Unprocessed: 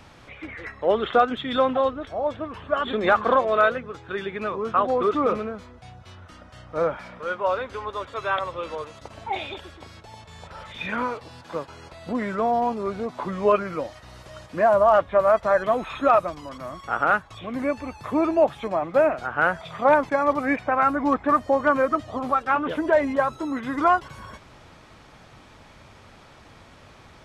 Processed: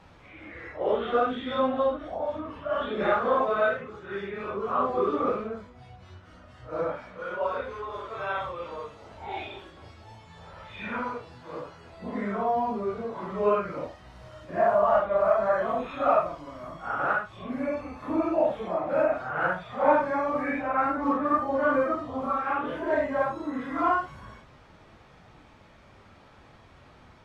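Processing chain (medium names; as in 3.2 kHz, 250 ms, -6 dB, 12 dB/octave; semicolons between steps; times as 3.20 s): phase randomisation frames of 200 ms; treble shelf 4.5 kHz -10 dB; trim -4 dB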